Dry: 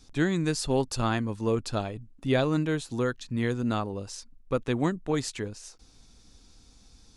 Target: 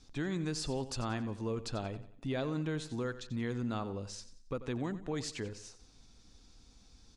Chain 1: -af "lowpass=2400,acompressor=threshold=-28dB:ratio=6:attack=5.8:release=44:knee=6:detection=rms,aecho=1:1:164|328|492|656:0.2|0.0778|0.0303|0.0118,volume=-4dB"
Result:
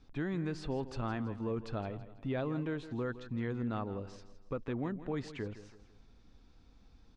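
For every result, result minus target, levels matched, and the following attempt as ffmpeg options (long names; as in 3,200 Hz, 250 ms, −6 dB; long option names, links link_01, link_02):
echo 74 ms late; 8,000 Hz band −16.0 dB
-af "lowpass=2400,acompressor=threshold=-28dB:ratio=6:attack=5.8:release=44:knee=6:detection=rms,aecho=1:1:90|180|270|360:0.2|0.0778|0.0303|0.0118,volume=-4dB"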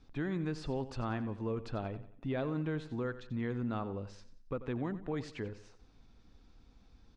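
8,000 Hz band −16.0 dB
-af "lowpass=7500,acompressor=threshold=-28dB:ratio=6:attack=5.8:release=44:knee=6:detection=rms,aecho=1:1:90|180|270|360:0.2|0.0778|0.0303|0.0118,volume=-4dB"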